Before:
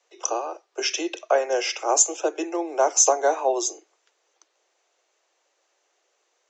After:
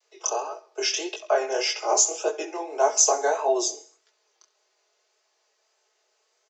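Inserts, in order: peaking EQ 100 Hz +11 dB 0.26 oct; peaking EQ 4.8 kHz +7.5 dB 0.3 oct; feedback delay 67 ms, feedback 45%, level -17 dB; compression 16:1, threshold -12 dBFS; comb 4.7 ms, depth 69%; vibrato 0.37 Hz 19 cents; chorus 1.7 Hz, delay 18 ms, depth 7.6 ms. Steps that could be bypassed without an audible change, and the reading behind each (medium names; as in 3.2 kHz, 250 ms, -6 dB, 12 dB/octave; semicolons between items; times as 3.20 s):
peaking EQ 100 Hz: input has nothing below 250 Hz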